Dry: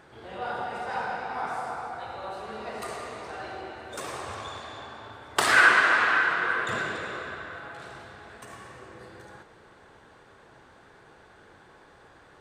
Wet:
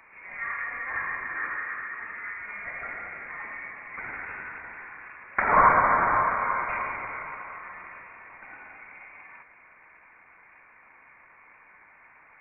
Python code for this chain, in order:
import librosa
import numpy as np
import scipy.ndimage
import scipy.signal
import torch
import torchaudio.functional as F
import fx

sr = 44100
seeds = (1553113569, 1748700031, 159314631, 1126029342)

y = scipy.signal.sosfilt(scipy.signal.butter(2, 150.0, 'highpass', fs=sr, output='sos'), x)
y = fx.freq_invert(y, sr, carrier_hz=2600)